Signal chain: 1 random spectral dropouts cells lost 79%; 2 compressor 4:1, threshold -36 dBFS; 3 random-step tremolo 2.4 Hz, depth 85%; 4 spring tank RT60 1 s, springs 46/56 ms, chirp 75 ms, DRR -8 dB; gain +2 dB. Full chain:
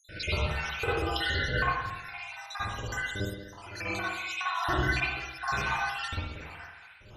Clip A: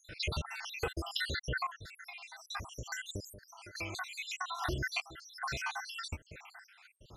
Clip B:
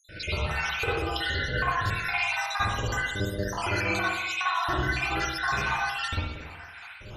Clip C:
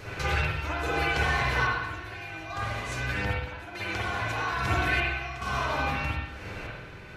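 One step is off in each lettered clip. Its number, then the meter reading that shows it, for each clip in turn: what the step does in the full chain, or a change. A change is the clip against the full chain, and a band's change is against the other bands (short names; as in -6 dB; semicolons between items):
4, crest factor change +3.0 dB; 3, momentary loudness spread change -7 LU; 1, 4 kHz band -3.0 dB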